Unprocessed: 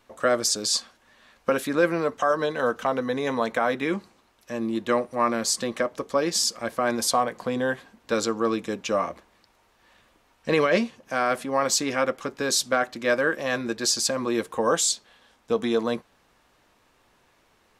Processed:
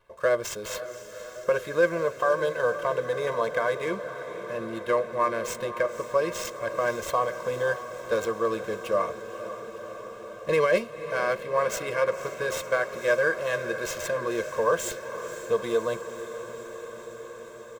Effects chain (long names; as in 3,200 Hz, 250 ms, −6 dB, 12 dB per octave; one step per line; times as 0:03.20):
running median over 9 samples
comb filter 1.9 ms, depth 92%
feedback delay with all-pass diffusion 520 ms, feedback 76%, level −12 dB
level −5 dB